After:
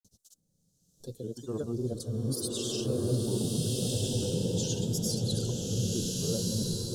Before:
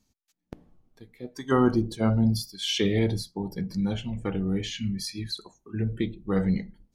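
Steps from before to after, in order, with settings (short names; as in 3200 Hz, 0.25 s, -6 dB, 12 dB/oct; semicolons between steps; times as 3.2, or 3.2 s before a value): in parallel at -6 dB: soft clip -28 dBFS, distortion -6 dB; on the sum: grains, grains 20/s, pitch spread up and down by 3 st; Butterworth band-stop 2100 Hz, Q 1.2; high shelf 4800 Hz +10.5 dB; reverse; compressor 6:1, threshold -38 dBFS, peak gain reduction 20 dB; reverse; graphic EQ 125/500/1000/2000/8000 Hz +10/+11/-9/-3/+9 dB; spectral freeze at 0.41, 0.57 s; bloom reverb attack 1.49 s, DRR -2.5 dB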